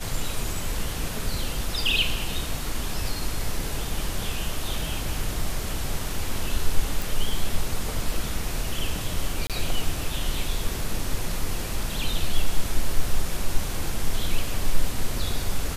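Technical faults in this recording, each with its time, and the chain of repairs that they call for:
0:07.02: click
0:09.47–0:09.50: drop-out 27 ms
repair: click removal
repair the gap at 0:09.47, 27 ms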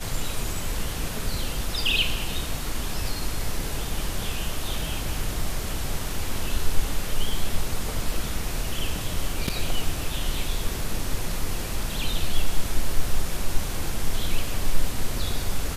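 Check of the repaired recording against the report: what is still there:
none of them is left

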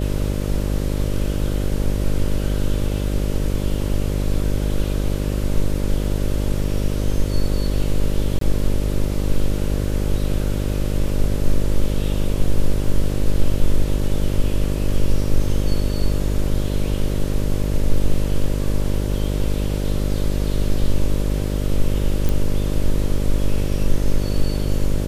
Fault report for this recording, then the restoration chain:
mains buzz 50 Hz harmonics 12 −22 dBFS
0:08.39–0:08.41: drop-out 23 ms
0:22.29: click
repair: click removal
hum removal 50 Hz, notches 12
repair the gap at 0:08.39, 23 ms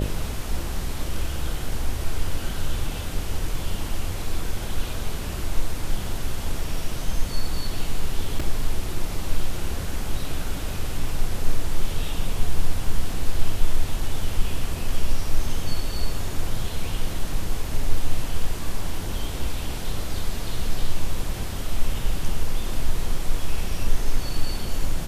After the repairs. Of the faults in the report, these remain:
none of them is left

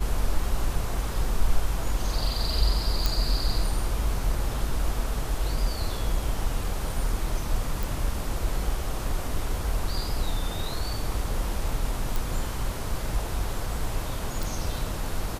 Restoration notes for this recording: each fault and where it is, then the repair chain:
0:03.06: click
0:07.83: click
0:12.16: click
0:14.43: click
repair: click removal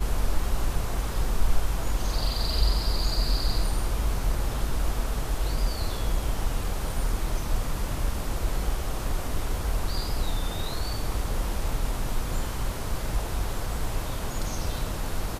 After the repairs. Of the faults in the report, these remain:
none of them is left

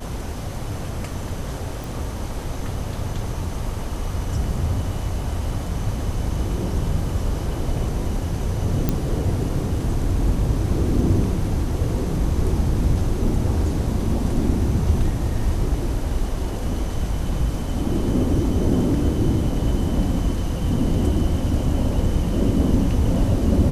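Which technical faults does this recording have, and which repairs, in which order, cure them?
0:01.84: click
0:08.89: click −7 dBFS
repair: click removal

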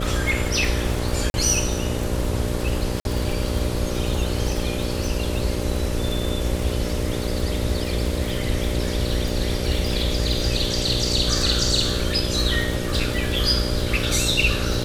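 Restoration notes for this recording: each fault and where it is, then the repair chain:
mains buzz 60 Hz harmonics 10 −27 dBFS
surface crackle 55 per second −25 dBFS
0:01.30–0:01.34: drop-out 41 ms
0:03.00–0:03.05: drop-out 51 ms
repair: click removal
hum removal 60 Hz, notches 10
repair the gap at 0:01.30, 41 ms
repair the gap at 0:03.00, 51 ms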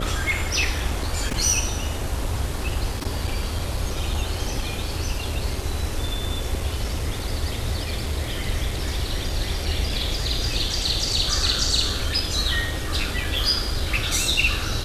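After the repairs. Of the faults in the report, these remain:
none of them is left

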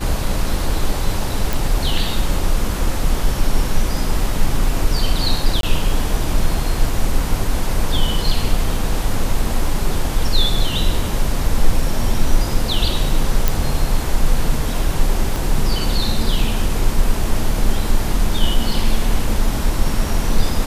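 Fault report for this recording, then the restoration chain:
0:01.53: click
0:05.61–0:05.63: drop-out 22 ms
0:13.48: click
0:15.36: click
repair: click removal
repair the gap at 0:05.61, 22 ms

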